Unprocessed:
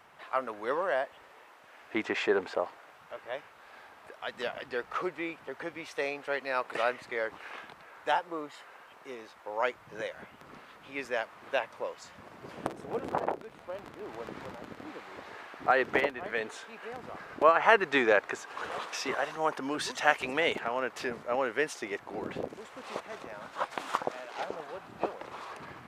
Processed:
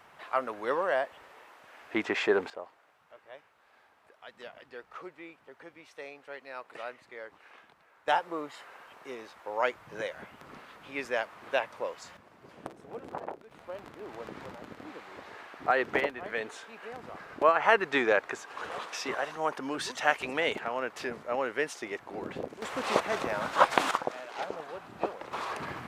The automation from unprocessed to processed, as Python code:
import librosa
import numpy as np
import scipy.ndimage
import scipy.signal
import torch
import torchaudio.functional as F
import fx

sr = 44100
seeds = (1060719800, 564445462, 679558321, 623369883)

y = fx.gain(x, sr, db=fx.steps((0.0, 1.5), (2.5, -11.0), (8.08, 1.5), (12.17, -7.5), (13.51, -1.0), (22.62, 11.5), (23.91, 0.5), (25.33, 7.5)))